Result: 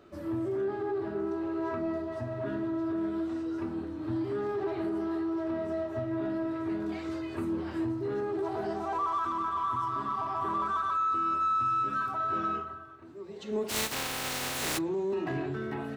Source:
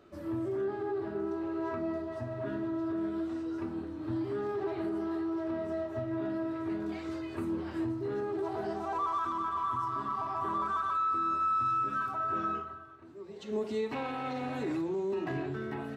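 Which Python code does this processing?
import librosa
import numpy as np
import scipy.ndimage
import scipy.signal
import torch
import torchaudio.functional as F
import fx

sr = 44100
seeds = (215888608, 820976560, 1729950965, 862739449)

p1 = fx.spec_flatten(x, sr, power=0.25, at=(13.68, 14.77), fade=0.02)
p2 = 10.0 ** (-32.5 / 20.0) * np.tanh(p1 / 10.0 ** (-32.5 / 20.0))
y = p1 + (p2 * 10.0 ** (-9.0 / 20.0))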